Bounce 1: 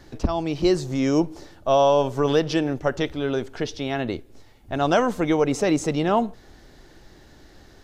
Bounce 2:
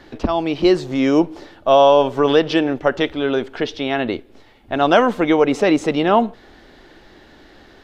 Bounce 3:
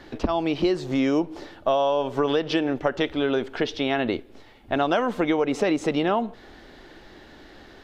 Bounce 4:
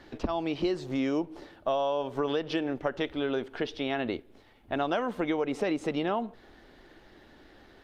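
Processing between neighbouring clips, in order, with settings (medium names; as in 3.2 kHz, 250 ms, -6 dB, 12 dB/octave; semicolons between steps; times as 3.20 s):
FFT filter 150 Hz 0 dB, 220 Hz +7 dB, 3.3 kHz +10 dB, 6.3 kHz -2 dB; trim -2 dB
compression 6:1, threshold -18 dBFS, peak gain reduction 10 dB; trim -1 dB
trim -6.5 dB; Opus 48 kbps 48 kHz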